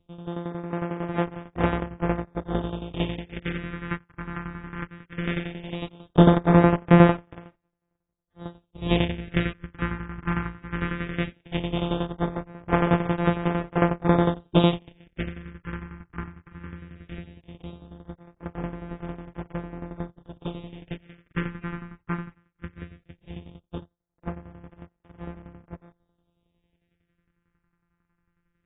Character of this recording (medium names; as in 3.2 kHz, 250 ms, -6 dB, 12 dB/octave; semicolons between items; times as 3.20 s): a buzz of ramps at a fixed pitch in blocks of 256 samples; tremolo saw down 11 Hz, depth 75%; phasing stages 4, 0.17 Hz, lowest notch 590–4300 Hz; AAC